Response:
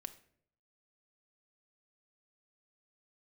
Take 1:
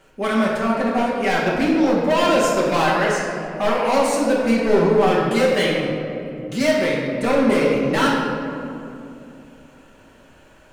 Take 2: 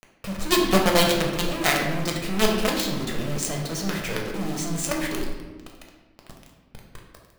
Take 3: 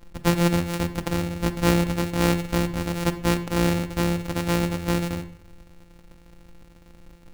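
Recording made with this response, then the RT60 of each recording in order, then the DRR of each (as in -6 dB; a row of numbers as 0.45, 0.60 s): 3; 2.7, 1.3, 0.65 s; -6.0, -0.5, 8.0 dB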